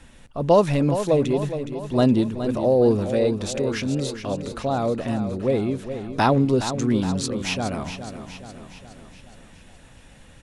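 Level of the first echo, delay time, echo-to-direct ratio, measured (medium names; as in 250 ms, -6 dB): -10.0 dB, 417 ms, -8.5 dB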